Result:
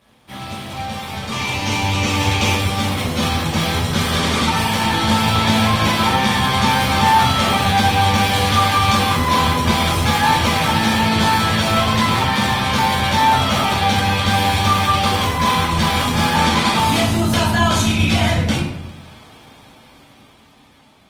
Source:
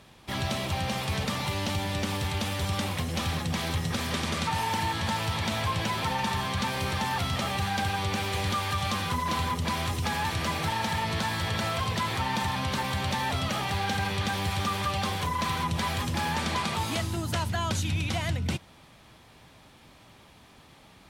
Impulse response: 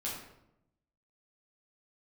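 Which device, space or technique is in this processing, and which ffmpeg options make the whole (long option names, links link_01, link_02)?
far-field microphone of a smart speaker: -filter_complex "[0:a]asplit=3[link_01][link_02][link_03];[link_01]afade=type=out:start_time=1.3:duration=0.02[link_04];[link_02]equalizer=frequency=100:width_type=o:width=0.67:gain=6,equalizer=frequency=400:width_type=o:width=0.67:gain=8,equalizer=frequency=1000:width_type=o:width=0.67:gain=6,equalizer=frequency=2500:width_type=o:width=0.67:gain=9,equalizer=frequency=6300:width_type=o:width=0.67:gain=9,afade=type=in:start_time=1.3:duration=0.02,afade=type=out:start_time=2.54:duration=0.02[link_05];[link_03]afade=type=in:start_time=2.54:duration=0.02[link_06];[link_04][link_05][link_06]amix=inputs=3:normalize=0[link_07];[1:a]atrim=start_sample=2205[link_08];[link_07][link_08]afir=irnorm=-1:irlink=0,highpass=frequency=120:poles=1,dynaudnorm=framelen=510:gausssize=9:maxgain=13dB" -ar 48000 -c:a libopus -b:a 24k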